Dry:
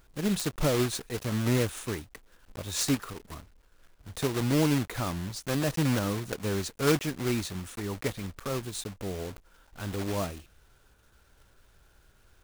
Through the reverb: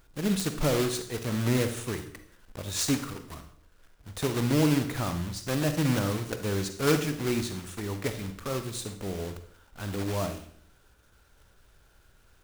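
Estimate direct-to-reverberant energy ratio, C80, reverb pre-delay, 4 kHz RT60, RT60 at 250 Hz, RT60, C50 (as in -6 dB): 8.0 dB, 13.0 dB, 38 ms, 0.55 s, 0.70 s, 0.60 s, 9.5 dB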